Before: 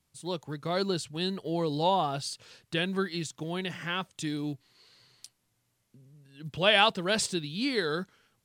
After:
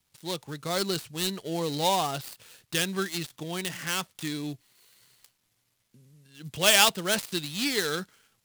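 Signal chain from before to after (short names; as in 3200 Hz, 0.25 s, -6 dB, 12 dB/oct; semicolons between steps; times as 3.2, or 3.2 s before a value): switching dead time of 0.093 ms; high shelf 2100 Hz +9.5 dB; gain -1 dB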